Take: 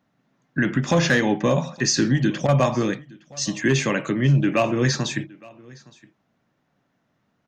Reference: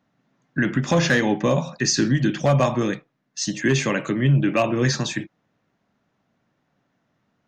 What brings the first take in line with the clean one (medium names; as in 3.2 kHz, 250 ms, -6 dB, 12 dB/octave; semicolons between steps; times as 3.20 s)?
interpolate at 2.47 s, 13 ms; inverse comb 865 ms -24 dB